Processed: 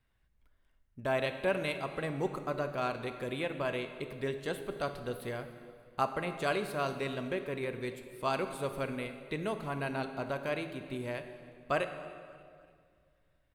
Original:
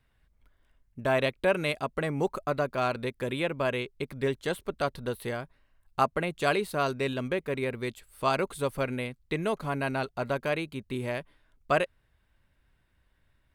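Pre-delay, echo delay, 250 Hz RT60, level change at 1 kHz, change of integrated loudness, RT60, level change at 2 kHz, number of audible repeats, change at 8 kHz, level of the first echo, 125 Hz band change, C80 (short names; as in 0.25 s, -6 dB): 3 ms, 0.291 s, 2.5 s, -5.5 dB, -5.5 dB, 2.0 s, -5.5 dB, 2, -5.5 dB, -22.5 dB, -5.5 dB, 10.0 dB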